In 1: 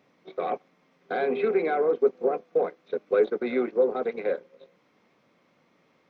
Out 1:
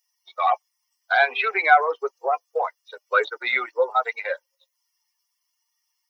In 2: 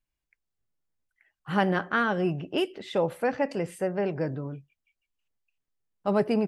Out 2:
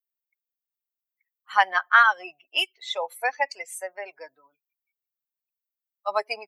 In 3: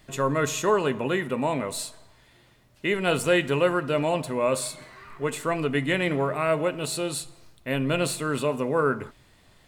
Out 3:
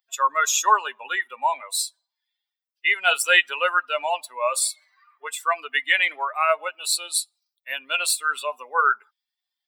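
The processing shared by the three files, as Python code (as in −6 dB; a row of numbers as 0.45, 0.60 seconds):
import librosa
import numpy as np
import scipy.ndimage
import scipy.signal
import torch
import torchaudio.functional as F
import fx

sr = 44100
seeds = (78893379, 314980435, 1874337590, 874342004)

y = fx.bin_expand(x, sr, power=2.0)
y = scipy.signal.sosfilt(scipy.signal.butter(4, 830.0, 'highpass', fs=sr, output='sos'), y)
y = y * 10.0 ** (-3 / 20.0) / np.max(np.abs(y))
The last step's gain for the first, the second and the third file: +19.5, +13.0, +13.0 decibels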